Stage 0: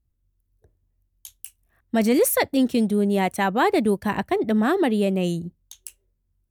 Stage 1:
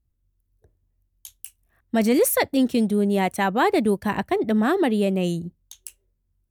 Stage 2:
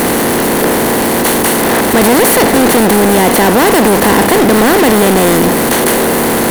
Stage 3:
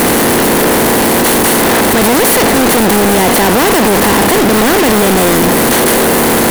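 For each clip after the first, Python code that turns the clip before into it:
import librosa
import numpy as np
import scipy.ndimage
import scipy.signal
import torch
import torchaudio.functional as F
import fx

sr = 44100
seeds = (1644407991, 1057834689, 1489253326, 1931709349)

y1 = x
y2 = fx.bin_compress(y1, sr, power=0.2)
y2 = fx.power_curve(y2, sr, exponent=0.35)
y2 = y2 * 10.0 ** (-3.5 / 20.0)
y3 = 10.0 ** (-14.0 / 20.0) * np.tanh(y2 / 10.0 ** (-14.0 / 20.0))
y3 = y3 * 10.0 ** (6.0 / 20.0)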